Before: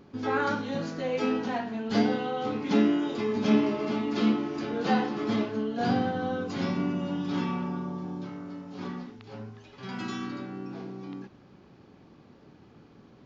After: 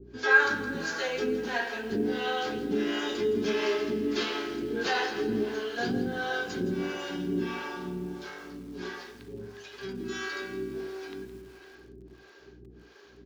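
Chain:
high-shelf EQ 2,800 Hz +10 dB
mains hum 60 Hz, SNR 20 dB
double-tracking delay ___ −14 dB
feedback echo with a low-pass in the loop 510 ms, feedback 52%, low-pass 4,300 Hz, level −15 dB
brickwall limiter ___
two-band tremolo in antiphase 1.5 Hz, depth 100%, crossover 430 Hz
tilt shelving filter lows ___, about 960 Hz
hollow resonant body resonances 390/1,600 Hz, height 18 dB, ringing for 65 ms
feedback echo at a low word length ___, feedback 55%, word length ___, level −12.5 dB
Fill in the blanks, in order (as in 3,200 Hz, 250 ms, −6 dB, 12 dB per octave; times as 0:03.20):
17 ms, −17 dBFS, −4 dB, 165 ms, 8 bits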